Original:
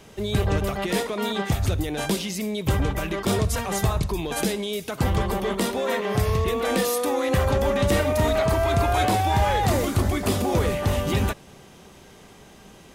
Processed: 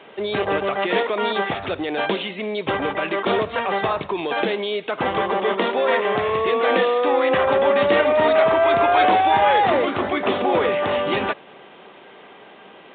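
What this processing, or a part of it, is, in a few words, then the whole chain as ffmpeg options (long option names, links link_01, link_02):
telephone: -af "highpass=390,lowpass=3500,volume=7.5dB" -ar 8000 -c:a pcm_mulaw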